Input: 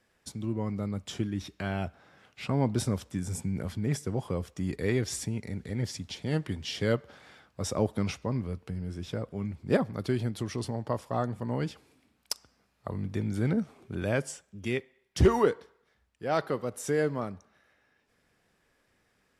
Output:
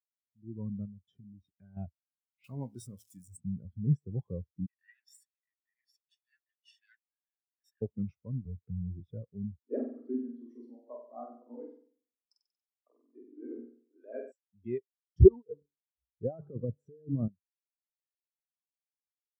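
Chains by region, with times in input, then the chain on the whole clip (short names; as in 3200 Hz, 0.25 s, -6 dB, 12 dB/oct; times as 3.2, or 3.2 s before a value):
0.85–1.77 compressor 5:1, threshold -34 dBFS + high shelf 10000 Hz -5.5 dB + notch comb 330 Hz
2.44–3.37 switching spikes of -25 dBFS + tilt shelf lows -5 dB, about 630 Hz + de-hum 54.15 Hz, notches 23
4.66–7.82 minimum comb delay 1.1 ms + steep high-pass 1400 Hz 72 dB/oct + high shelf 11000 Hz +11 dB
8.45–9 sample leveller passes 1 + three-band squash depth 70%
9.59–14.32 flange 1.9 Hz, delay 3.6 ms, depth 1.2 ms, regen +86% + Chebyshev high-pass 240 Hz, order 8 + flutter echo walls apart 8 m, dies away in 1.3 s
15.28–17.28 tilt -3 dB/oct + de-hum 144.4 Hz, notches 2 + negative-ratio compressor -28 dBFS, ratio -0.5
whole clip: AGC gain up to 15.5 dB; spectral expander 2.5:1; gain -5.5 dB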